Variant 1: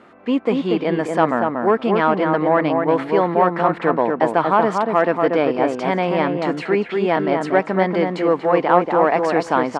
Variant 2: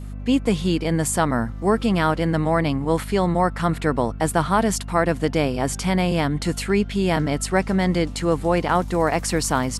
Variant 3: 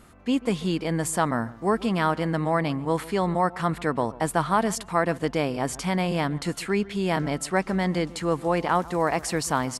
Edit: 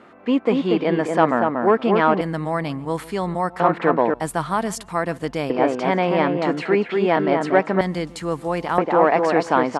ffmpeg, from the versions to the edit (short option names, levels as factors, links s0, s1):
-filter_complex "[2:a]asplit=3[s0][s1][s2];[0:a]asplit=4[s3][s4][s5][s6];[s3]atrim=end=2.212[s7];[s0]atrim=start=2.208:end=3.602[s8];[s4]atrim=start=3.598:end=4.142[s9];[s1]atrim=start=4.138:end=5.502[s10];[s5]atrim=start=5.498:end=7.812[s11];[s2]atrim=start=7.808:end=8.782[s12];[s6]atrim=start=8.778[s13];[s7][s8]acrossfade=d=0.004:c1=hsin:c2=hsin[s14];[s14][s9]acrossfade=d=0.004:c1=hsin:c2=hsin[s15];[s15][s10]acrossfade=d=0.004:c1=hsin:c2=hsin[s16];[s16][s11]acrossfade=d=0.004:c1=hsin:c2=hsin[s17];[s17][s12]acrossfade=d=0.004:c1=hsin:c2=hsin[s18];[s18][s13]acrossfade=d=0.004:c1=hsin:c2=hsin"